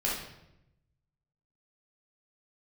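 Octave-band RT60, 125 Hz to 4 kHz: 1.5, 1.1, 0.95, 0.75, 0.75, 0.65 s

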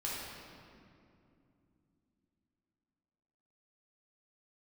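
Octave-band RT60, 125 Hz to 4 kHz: 3.9, 4.2, 2.9, 2.3, 2.0, 1.5 s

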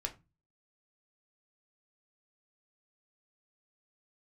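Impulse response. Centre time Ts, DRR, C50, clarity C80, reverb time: 8 ms, 3.0 dB, 16.5 dB, 23.0 dB, 0.25 s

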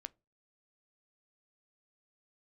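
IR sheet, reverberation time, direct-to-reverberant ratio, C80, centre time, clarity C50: 0.30 s, 16.0 dB, 36.0 dB, 1 ms, 28.5 dB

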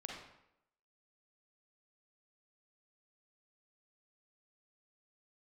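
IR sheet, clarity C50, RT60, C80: 0.5 dB, 0.80 s, 4.5 dB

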